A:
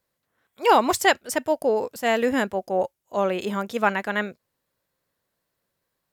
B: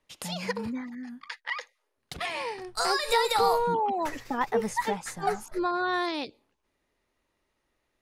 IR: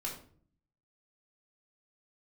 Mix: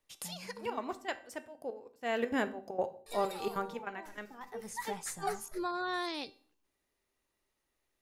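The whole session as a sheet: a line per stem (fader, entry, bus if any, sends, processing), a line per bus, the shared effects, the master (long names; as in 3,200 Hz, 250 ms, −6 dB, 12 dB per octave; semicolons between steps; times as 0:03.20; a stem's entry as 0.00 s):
0:01.98 −11 dB → 0:02.21 −2 dB → 0:03.59 −2 dB → 0:03.86 −12 dB, 0.00 s, send −9 dB, high-shelf EQ 6,200 Hz −7.5 dB; gate pattern "xx..x.xxx." 194 BPM −12 dB
−1.0 dB, 0.00 s, muted 0:00.84–0:03.06, send −22 dB, high-shelf EQ 5,600 Hz +11.5 dB; automatic ducking −17 dB, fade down 1.50 s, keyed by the first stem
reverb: on, RT60 0.50 s, pre-delay 3 ms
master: tuned comb filter 390 Hz, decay 0.46 s, mix 60%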